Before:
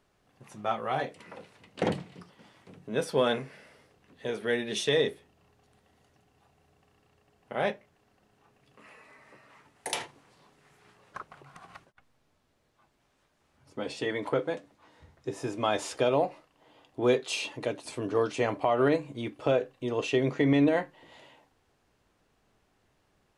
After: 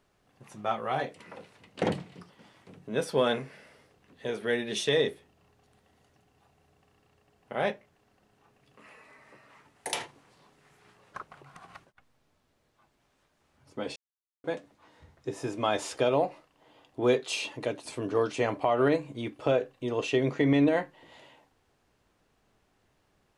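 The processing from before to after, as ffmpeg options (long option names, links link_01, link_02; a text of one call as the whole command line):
ffmpeg -i in.wav -filter_complex "[0:a]asplit=3[link_01][link_02][link_03];[link_01]atrim=end=13.96,asetpts=PTS-STARTPTS,afade=type=out:start_time=13.956:duration=0.004:curve=hsin[link_04];[link_02]atrim=start=13.96:end=14.44,asetpts=PTS-STARTPTS,volume=0[link_05];[link_03]atrim=start=14.44,asetpts=PTS-STARTPTS,afade=type=in:duration=0.004:curve=hsin[link_06];[link_04][link_05][link_06]concat=n=3:v=0:a=1" out.wav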